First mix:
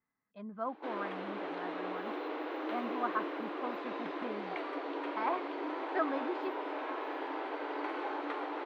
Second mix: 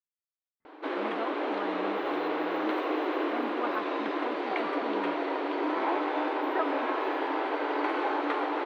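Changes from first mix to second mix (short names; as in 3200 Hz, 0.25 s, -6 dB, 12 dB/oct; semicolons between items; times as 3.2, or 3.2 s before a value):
speech: entry +0.60 s; background +8.5 dB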